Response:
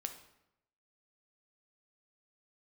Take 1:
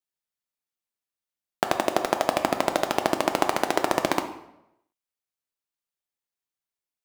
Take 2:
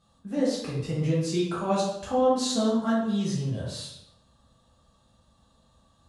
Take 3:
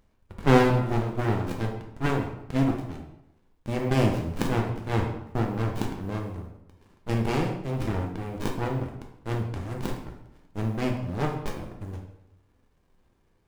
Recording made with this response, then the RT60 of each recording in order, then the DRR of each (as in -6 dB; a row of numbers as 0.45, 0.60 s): 1; 0.85, 0.85, 0.85 s; 6.0, -7.5, 0.5 dB